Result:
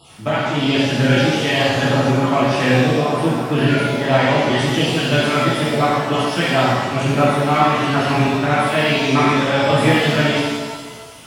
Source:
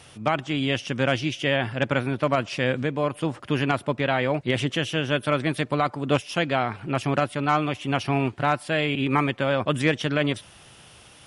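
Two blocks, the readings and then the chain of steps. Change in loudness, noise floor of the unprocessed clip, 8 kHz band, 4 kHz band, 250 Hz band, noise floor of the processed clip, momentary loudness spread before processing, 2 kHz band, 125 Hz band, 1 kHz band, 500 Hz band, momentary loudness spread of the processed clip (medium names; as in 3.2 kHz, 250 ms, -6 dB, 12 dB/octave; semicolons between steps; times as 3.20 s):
+8.0 dB, -50 dBFS, +11.0 dB, +9.5 dB, +8.5 dB, -34 dBFS, 3 LU, +8.0 dB, +8.5 dB, +8.5 dB, +8.0 dB, 4 LU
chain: random holes in the spectrogram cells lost 23%; pitch-shifted reverb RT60 1.3 s, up +7 st, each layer -8 dB, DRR -9 dB; trim -1 dB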